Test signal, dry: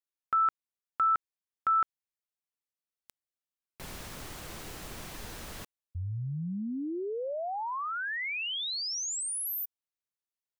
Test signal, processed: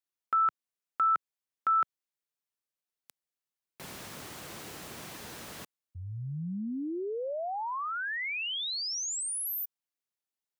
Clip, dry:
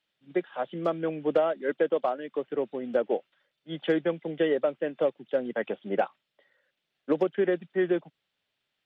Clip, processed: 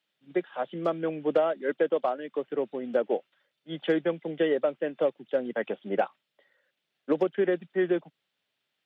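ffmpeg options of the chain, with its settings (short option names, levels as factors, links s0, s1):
-af "highpass=120"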